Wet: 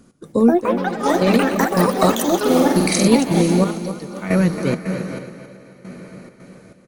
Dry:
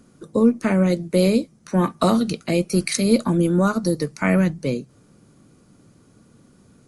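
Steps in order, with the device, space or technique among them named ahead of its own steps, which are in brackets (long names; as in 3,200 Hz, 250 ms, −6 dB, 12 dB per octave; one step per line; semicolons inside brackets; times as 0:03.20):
0:00.71–0:01.34: high-frequency loss of the air 110 metres
feedback delay with all-pass diffusion 513 ms, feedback 49%, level −8 dB
trance gate with a delay (gate pattern "x.xxx......xxx" 136 BPM −12 dB; repeating echo 273 ms, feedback 37%, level −10.5 dB)
delay with pitch and tempo change per echo 246 ms, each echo +7 semitones, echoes 3
0:02.38–0:03.08: flutter between parallel walls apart 8.1 metres, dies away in 0.71 s
level +2 dB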